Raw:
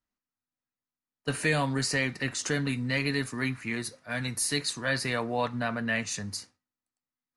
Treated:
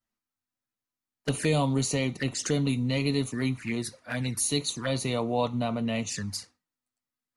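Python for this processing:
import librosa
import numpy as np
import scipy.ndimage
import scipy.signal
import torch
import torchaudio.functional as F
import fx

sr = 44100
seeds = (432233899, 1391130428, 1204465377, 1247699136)

y = fx.env_flanger(x, sr, rest_ms=9.0, full_db=-28.0)
y = fx.dynamic_eq(y, sr, hz=2500.0, q=2.2, threshold_db=-46.0, ratio=4.0, max_db=-4)
y = y * 10.0 ** (4.0 / 20.0)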